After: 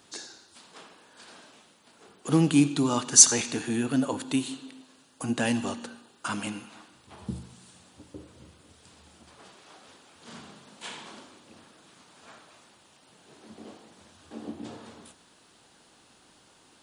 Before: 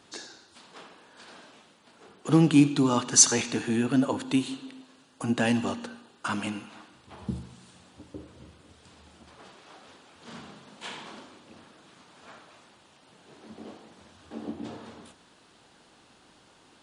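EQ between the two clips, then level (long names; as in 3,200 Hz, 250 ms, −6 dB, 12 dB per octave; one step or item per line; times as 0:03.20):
high-shelf EQ 7,400 Hz +11.5 dB
−2.0 dB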